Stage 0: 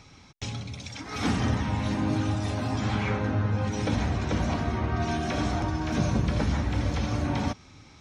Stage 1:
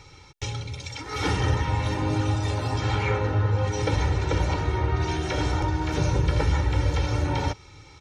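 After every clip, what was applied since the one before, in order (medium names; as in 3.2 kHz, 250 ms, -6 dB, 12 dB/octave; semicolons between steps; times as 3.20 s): comb 2.2 ms, depth 86%; trim +1 dB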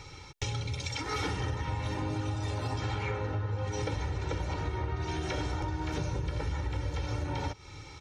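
compression 10:1, threshold -31 dBFS, peak gain reduction 14 dB; trim +1.5 dB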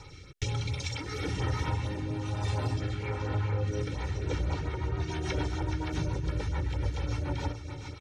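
delay 425 ms -9.5 dB; LFO notch sine 4.3 Hz 480–7400 Hz; rotary cabinet horn 1.1 Hz, later 7 Hz, at 3.78 s; trim +3 dB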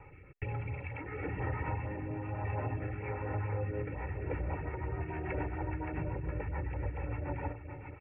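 rippled Chebyshev low-pass 2.7 kHz, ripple 6 dB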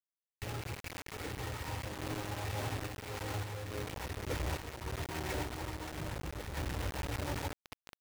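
bit crusher 6-bit; random-step tremolo; trim -1.5 dB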